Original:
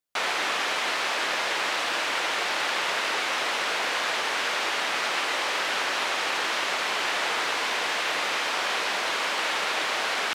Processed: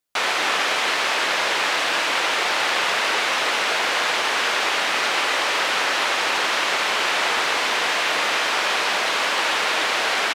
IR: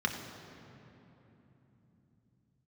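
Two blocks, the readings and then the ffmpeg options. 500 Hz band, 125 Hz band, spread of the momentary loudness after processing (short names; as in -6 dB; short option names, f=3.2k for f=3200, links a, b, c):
+5.5 dB, n/a, 0 LU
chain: -filter_complex "[0:a]bandreject=f=65.19:t=h:w=4,bandreject=f=130.38:t=h:w=4,bandreject=f=195.57:t=h:w=4,bandreject=f=260.76:t=h:w=4,bandreject=f=325.95:t=h:w=4,bandreject=f=391.14:t=h:w=4,bandreject=f=456.33:t=h:w=4,bandreject=f=521.52:t=h:w=4,bandreject=f=586.71:t=h:w=4,bandreject=f=651.9:t=h:w=4,bandreject=f=717.09:t=h:w=4,bandreject=f=782.28:t=h:w=4,bandreject=f=847.47:t=h:w=4,bandreject=f=912.66:t=h:w=4,bandreject=f=977.85:t=h:w=4,bandreject=f=1.04304k:t=h:w=4,bandreject=f=1.10823k:t=h:w=4,bandreject=f=1.17342k:t=h:w=4,bandreject=f=1.23861k:t=h:w=4,bandreject=f=1.3038k:t=h:w=4,bandreject=f=1.36899k:t=h:w=4,bandreject=f=1.43418k:t=h:w=4,bandreject=f=1.49937k:t=h:w=4,bandreject=f=1.56456k:t=h:w=4,bandreject=f=1.62975k:t=h:w=4,bandreject=f=1.69494k:t=h:w=4,bandreject=f=1.76013k:t=h:w=4,bandreject=f=1.82532k:t=h:w=4,bandreject=f=1.89051k:t=h:w=4,bandreject=f=1.9557k:t=h:w=4,bandreject=f=2.02089k:t=h:w=4,bandreject=f=2.08608k:t=h:w=4,bandreject=f=2.15127k:t=h:w=4,bandreject=f=2.21646k:t=h:w=4,bandreject=f=2.28165k:t=h:w=4,asplit=2[a][b];[b]adelay=300,highpass=300,lowpass=3.4k,asoftclip=type=hard:threshold=-21.5dB,volume=-8dB[c];[a][c]amix=inputs=2:normalize=0,volume=5.5dB"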